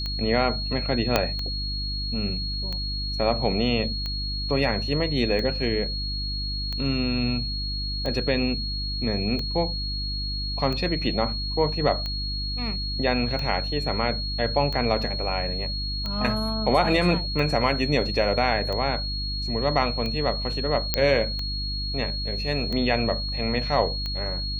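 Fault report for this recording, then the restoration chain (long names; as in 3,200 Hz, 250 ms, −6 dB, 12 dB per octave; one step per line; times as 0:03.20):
mains hum 50 Hz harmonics 6 −31 dBFS
scratch tick 45 rpm −18 dBFS
whistle 4,300 Hz −30 dBFS
0:01.16: click −4 dBFS
0:20.94: click −4 dBFS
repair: click removal
hum removal 50 Hz, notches 6
notch filter 4,300 Hz, Q 30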